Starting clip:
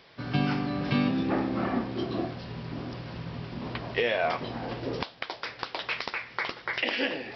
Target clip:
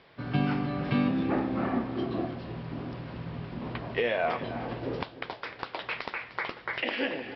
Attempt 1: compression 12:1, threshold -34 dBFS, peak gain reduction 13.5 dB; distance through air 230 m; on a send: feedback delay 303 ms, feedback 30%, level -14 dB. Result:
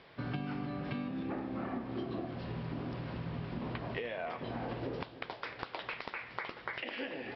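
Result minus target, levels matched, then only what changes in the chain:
compression: peak gain reduction +13.5 dB
remove: compression 12:1, threshold -34 dBFS, peak gain reduction 13.5 dB

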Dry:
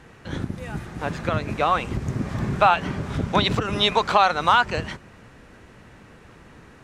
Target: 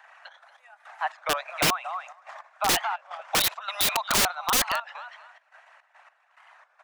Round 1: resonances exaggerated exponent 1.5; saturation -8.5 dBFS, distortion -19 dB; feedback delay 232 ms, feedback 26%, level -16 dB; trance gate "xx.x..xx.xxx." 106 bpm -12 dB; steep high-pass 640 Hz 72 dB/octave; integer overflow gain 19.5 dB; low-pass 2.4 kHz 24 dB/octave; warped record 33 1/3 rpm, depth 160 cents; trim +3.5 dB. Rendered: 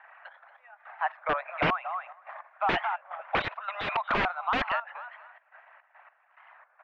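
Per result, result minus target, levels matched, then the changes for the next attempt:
saturation: distortion +15 dB; 2 kHz band +3.5 dB
change: saturation 0 dBFS, distortion -34 dB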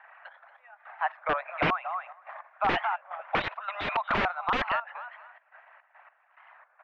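2 kHz band +3.5 dB
remove: low-pass 2.4 kHz 24 dB/octave

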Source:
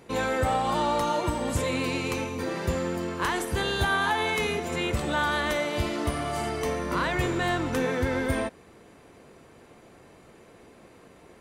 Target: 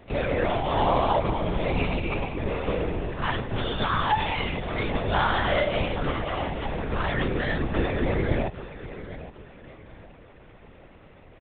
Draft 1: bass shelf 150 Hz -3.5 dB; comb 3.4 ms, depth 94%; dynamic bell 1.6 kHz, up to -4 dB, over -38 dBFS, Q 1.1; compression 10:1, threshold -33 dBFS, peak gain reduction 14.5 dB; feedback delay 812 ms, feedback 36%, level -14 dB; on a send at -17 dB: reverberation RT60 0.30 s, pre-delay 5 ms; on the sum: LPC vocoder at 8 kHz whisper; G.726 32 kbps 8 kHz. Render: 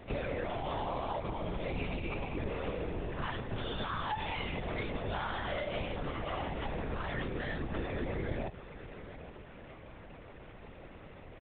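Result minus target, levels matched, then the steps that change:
compression: peak gain reduction +14.5 dB
remove: compression 10:1, threshold -33 dBFS, peak gain reduction 14.5 dB

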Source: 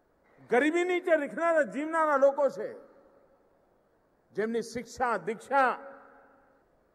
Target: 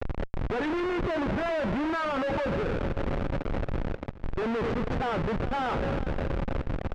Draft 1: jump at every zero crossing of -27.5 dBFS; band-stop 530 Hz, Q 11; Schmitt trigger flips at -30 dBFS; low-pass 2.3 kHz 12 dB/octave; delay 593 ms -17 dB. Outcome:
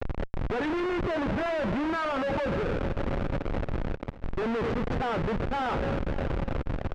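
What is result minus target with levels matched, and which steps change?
echo 176 ms late
change: delay 417 ms -17 dB

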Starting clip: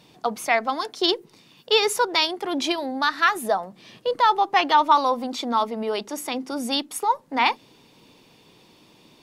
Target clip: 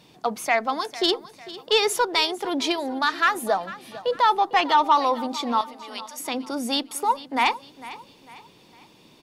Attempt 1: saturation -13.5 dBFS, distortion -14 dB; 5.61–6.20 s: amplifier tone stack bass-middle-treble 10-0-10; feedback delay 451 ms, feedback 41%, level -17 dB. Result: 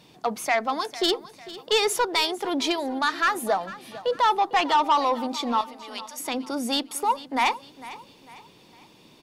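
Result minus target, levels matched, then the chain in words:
saturation: distortion +9 dB
saturation -7 dBFS, distortion -23 dB; 5.61–6.20 s: amplifier tone stack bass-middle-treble 10-0-10; feedback delay 451 ms, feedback 41%, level -17 dB

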